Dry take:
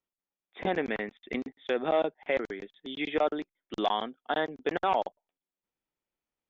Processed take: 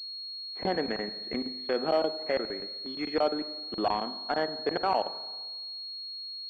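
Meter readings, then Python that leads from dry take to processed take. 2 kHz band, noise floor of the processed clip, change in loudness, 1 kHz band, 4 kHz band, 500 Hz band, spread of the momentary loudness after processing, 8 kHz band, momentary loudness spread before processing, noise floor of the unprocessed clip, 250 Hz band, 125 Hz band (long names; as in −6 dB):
−3.0 dB, −40 dBFS, 0.0 dB, 0.0 dB, +8.5 dB, +0.5 dB, 9 LU, can't be measured, 11 LU, below −85 dBFS, +0.5 dB, +0.5 dB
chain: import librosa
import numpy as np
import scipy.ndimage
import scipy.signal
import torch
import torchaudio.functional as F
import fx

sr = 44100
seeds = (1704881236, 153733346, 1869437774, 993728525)

y = fx.rev_spring(x, sr, rt60_s=1.3, pass_ms=(43, 51), chirp_ms=50, drr_db=12.5)
y = fx.pwm(y, sr, carrier_hz=4300.0)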